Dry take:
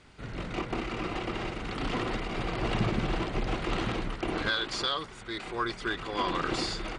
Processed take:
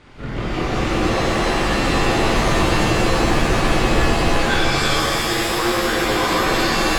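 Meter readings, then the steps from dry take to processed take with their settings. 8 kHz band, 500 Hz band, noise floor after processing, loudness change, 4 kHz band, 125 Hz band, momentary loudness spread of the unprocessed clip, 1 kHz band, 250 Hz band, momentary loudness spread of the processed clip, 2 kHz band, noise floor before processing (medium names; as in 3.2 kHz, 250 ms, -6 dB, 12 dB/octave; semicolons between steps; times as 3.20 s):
+20.0 dB, +14.5 dB, -25 dBFS, +14.0 dB, +12.5 dB, +13.0 dB, 7 LU, +14.0 dB, +13.0 dB, 3 LU, +14.5 dB, -46 dBFS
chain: treble shelf 4.7 kHz -10.5 dB; peak limiter -25 dBFS, peak gain reduction 8 dB; pitch-shifted reverb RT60 2.9 s, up +7 st, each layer -2 dB, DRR -4.5 dB; trim +8.5 dB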